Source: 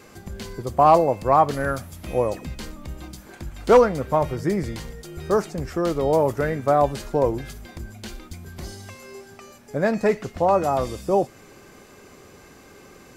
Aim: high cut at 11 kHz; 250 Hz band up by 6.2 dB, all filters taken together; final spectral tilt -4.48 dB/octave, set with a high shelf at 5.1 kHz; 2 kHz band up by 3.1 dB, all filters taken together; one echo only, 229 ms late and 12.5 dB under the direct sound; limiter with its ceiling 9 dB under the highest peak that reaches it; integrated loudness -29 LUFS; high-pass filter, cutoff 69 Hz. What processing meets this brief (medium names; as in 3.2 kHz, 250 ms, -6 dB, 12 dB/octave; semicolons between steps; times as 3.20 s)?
high-pass 69 Hz; low-pass 11 kHz; peaking EQ 250 Hz +8.5 dB; peaking EQ 2 kHz +5 dB; treble shelf 5.1 kHz -7.5 dB; peak limiter -11 dBFS; delay 229 ms -12.5 dB; trim -6 dB